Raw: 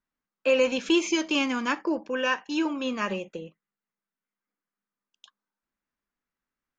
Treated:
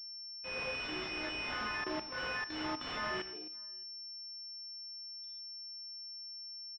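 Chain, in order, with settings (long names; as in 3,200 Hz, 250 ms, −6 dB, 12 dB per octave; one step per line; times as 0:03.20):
every partial snapped to a pitch grid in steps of 3 semitones
high-frequency loss of the air 180 metres
floating-point word with a short mantissa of 2 bits
noise reduction from a noise print of the clip's start 25 dB
downward compressor 1.5 to 1, threshold −31 dBFS, peak gain reduction 5 dB
high-pass filter 240 Hz 24 dB per octave
spectral tilt +4.5 dB per octave
slap from a distant wall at 99 metres, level −25 dB
four-comb reverb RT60 0.32 s, combs from 29 ms, DRR −1 dB
output level in coarse steps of 17 dB
transient designer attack −8 dB, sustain +4 dB
switching amplifier with a slow clock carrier 5,400 Hz
level −1 dB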